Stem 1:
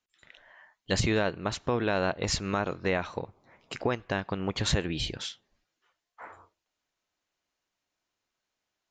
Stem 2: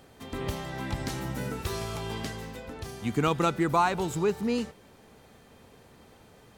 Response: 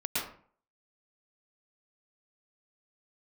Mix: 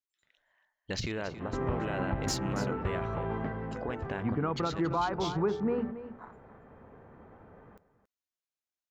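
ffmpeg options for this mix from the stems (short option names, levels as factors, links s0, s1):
-filter_complex "[0:a]afwtdn=0.0126,acompressor=threshold=0.0355:ratio=4,alimiter=limit=0.0708:level=0:latency=1,volume=0.794,asplit=2[s0][s1];[s1]volume=0.2[s2];[1:a]lowpass=f=1600:w=0.5412,lowpass=f=1600:w=1.3066,bandreject=f=60:t=h:w=6,bandreject=f=120:t=h:w=6,bandreject=f=180:t=h:w=6,bandreject=f=240:t=h:w=6,bandreject=f=300:t=h:w=6,bandreject=f=360:t=h:w=6,bandreject=f=420:t=h:w=6,adelay=1200,volume=1.26,asplit=2[s3][s4];[s4]volume=0.188[s5];[s2][s5]amix=inputs=2:normalize=0,aecho=0:1:278:1[s6];[s0][s3][s6]amix=inputs=3:normalize=0,crystalizer=i=1.5:c=0,alimiter=limit=0.0944:level=0:latency=1:release=343"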